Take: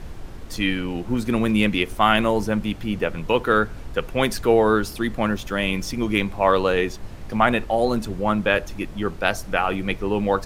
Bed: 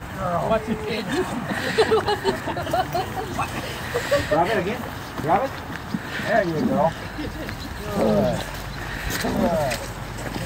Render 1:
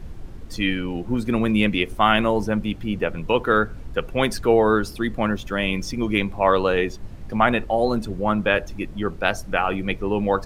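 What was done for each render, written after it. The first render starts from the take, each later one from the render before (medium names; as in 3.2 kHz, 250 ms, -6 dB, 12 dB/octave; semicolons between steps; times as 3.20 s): noise reduction 7 dB, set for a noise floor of -37 dBFS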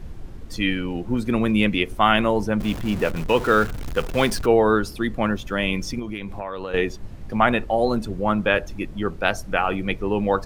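2.60–4.46 s: jump at every zero crossing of -28.5 dBFS; 5.99–6.74 s: compression 8:1, threshold -26 dBFS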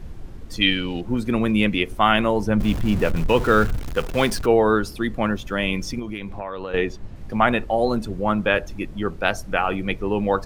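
0.61–1.01 s: peaking EQ 3.7 kHz +14.5 dB 0.79 oct; 2.47–3.79 s: bass shelf 160 Hz +8 dB; 6.29–7.16 s: treble shelf 8.6 kHz -11.5 dB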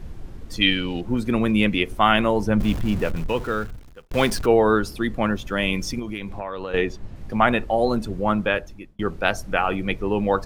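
2.57–4.11 s: fade out; 5.56–6.82 s: treble shelf 5.2 kHz +4 dB; 8.36–8.99 s: fade out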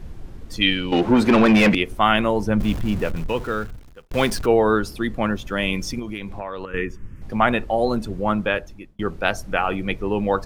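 0.92–1.75 s: overdrive pedal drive 27 dB, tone 1.8 kHz, clips at -5 dBFS; 6.65–7.22 s: static phaser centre 1.7 kHz, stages 4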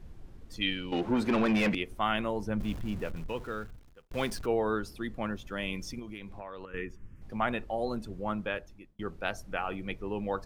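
trim -12 dB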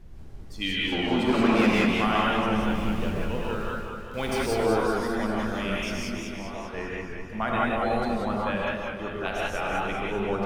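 gated-style reverb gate 200 ms rising, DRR -4 dB; modulated delay 198 ms, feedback 62%, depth 102 cents, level -5 dB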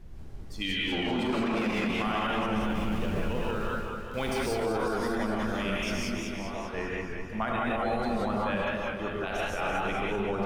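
peak limiter -20.5 dBFS, peak gain reduction 10.5 dB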